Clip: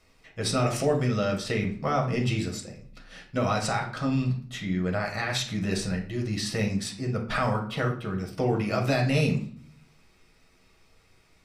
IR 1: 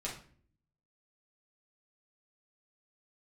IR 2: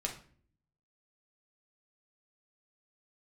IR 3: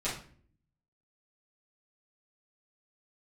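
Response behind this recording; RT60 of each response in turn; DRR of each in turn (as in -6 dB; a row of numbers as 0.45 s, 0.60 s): 2; 0.50 s, 0.50 s, 0.50 s; -5.0 dB, 0.5 dB, -10.5 dB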